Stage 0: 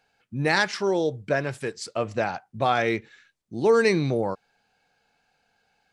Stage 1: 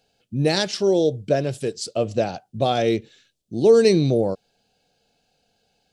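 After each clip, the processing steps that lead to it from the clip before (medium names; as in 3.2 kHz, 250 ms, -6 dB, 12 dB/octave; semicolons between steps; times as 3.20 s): high-order bell 1.4 kHz -13.5 dB; trim +5.5 dB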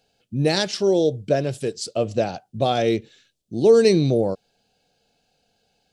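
no audible change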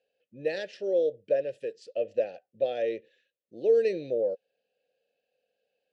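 vowel filter e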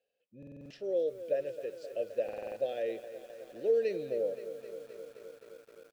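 buffer glitch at 0.38/2.24 s, samples 2048, times 6; bit-crushed delay 261 ms, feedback 80%, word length 8-bit, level -13 dB; trim -5.5 dB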